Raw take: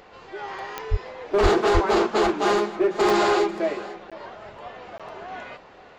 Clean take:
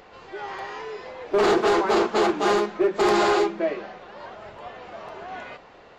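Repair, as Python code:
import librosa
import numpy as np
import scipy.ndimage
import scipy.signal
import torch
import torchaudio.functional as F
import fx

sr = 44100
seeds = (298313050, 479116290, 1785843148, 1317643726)

y = fx.fix_declick_ar(x, sr, threshold=10.0)
y = fx.fix_deplosive(y, sr, at_s=(0.9, 1.42, 1.73))
y = fx.fix_interpolate(y, sr, at_s=(4.1, 4.98), length_ms=16.0)
y = fx.fix_echo_inverse(y, sr, delay_ms=491, level_db=-17.5)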